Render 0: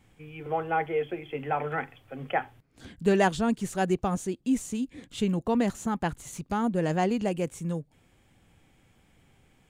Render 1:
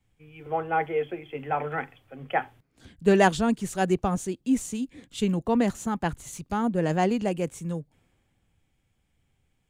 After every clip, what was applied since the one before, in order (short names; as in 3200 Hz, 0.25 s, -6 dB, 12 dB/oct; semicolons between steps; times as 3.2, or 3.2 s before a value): three-band expander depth 40%; gain +1.5 dB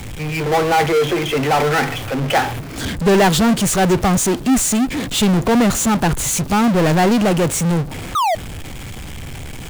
painted sound fall, 8.15–8.35, 610–1300 Hz -32 dBFS; power-law curve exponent 0.35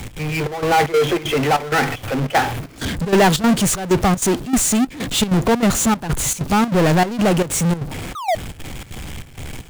step gate "x.xxxx..xxx.xx" 192 bpm -12 dB